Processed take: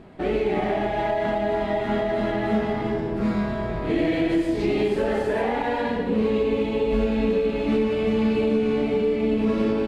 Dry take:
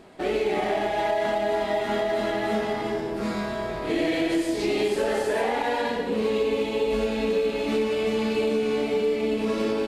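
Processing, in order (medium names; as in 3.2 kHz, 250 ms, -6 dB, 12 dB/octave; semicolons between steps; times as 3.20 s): tone controls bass +10 dB, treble -11 dB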